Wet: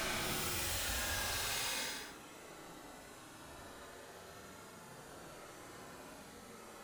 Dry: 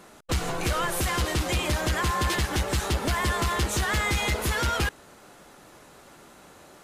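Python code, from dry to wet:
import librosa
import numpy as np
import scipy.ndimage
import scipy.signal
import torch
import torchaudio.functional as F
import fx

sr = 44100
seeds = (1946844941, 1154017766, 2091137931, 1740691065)

y = 10.0 ** (-31.5 / 20.0) * (np.abs((x / 10.0 ** (-31.5 / 20.0) + 3.0) % 4.0 - 2.0) - 1.0)
y = fx.paulstretch(y, sr, seeds[0], factor=17.0, window_s=0.05, from_s=4.78)
y = y * 10.0 ** (-2.0 / 20.0)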